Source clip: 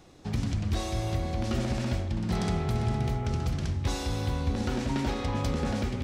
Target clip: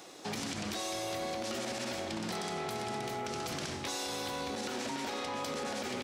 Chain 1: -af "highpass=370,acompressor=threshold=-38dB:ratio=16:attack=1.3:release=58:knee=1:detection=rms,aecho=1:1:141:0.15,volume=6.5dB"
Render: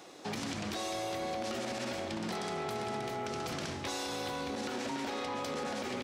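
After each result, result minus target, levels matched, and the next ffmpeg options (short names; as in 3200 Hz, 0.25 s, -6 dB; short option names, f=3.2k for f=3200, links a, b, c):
echo 49 ms late; 8000 Hz band -3.0 dB
-af "highpass=370,acompressor=threshold=-38dB:ratio=16:attack=1.3:release=58:knee=1:detection=rms,aecho=1:1:92:0.15,volume=6.5dB"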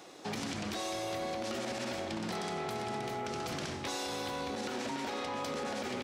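8000 Hz band -3.0 dB
-af "highpass=370,highshelf=f=4.2k:g=6,acompressor=threshold=-38dB:ratio=16:attack=1.3:release=58:knee=1:detection=rms,aecho=1:1:92:0.15,volume=6.5dB"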